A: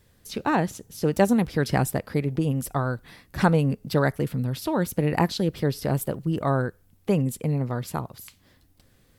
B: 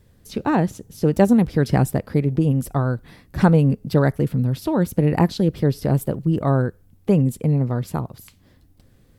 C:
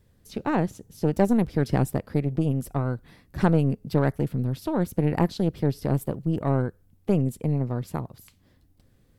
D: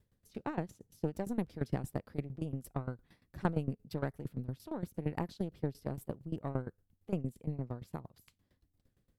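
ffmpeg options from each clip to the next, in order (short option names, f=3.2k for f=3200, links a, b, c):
-af "tiltshelf=f=640:g=4.5,volume=2.5dB"
-af "aeval=exprs='(tanh(2.51*val(0)+0.65)-tanh(0.65))/2.51':c=same,volume=-3dB"
-af "aeval=exprs='val(0)*pow(10,-18*if(lt(mod(8.7*n/s,1),2*abs(8.7)/1000),1-mod(8.7*n/s,1)/(2*abs(8.7)/1000),(mod(8.7*n/s,1)-2*abs(8.7)/1000)/(1-2*abs(8.7)/1000))/20)':c=same,volume=-7.5dB"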